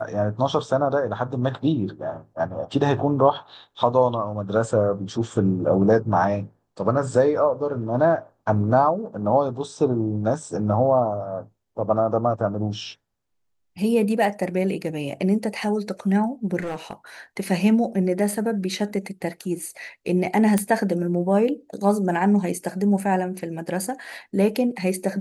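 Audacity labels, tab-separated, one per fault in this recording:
16.590000	16.930000	clipped -25 dBFS
20.580000	20.580000	pop -9 dBFS

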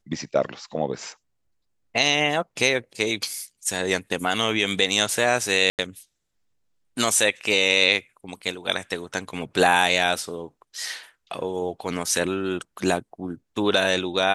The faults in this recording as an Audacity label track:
5.700000	5.790000	dropout 88 ms

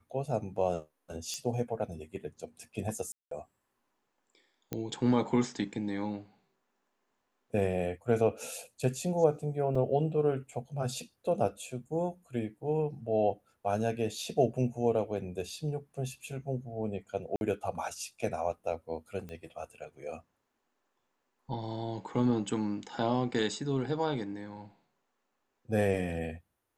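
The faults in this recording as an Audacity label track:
1.340000	1.340000	pop -24 dBFS
3.120000	3.310000	dropout 193 ms
4.730000	4.730000	pop -20 dBFS
9.750000	9.750000	dropout 4 ms
17.360000	17.410000	dropout 51 ms
19.290000	19.290000	pop -30 dBFS

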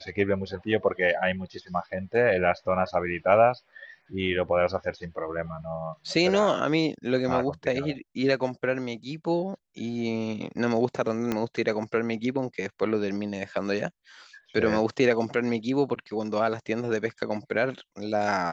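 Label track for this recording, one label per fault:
11.320000	11.320000	pop -13 dBFS

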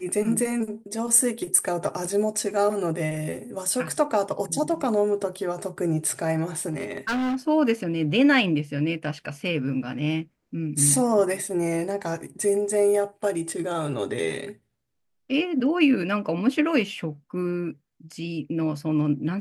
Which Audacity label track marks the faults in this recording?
6.710000	7.360000	clipped -23 dBFS

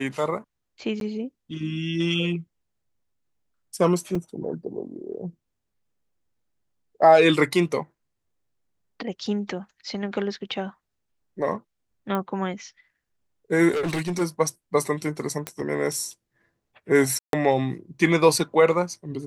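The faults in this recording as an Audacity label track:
1.000000	1.010000	dropout 12 ms
4.150000	4.150000	dropout 2.7 ms
12.150000	12.150000	pop -16 dBFS
13.720000	14.220000	clipped -22.5 dBFS
15.470000	15.470000	pop -13 dBFS
17.190000	17.330000	dropout 142 ms

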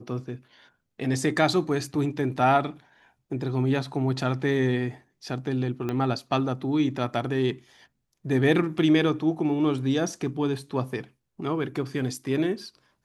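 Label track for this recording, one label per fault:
5.890000	5.890000	pop -17 dBFS

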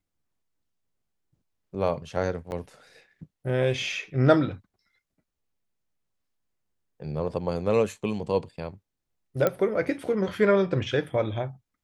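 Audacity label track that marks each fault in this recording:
2.510000	2.520000	dropout 9.8 ms
9.470000	9.470000	pop -10 dBFS

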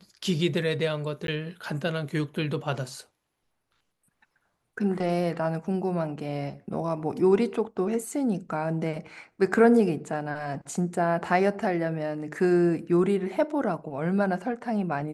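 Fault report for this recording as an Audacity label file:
1.270000	1.280000	dropout 12 ms

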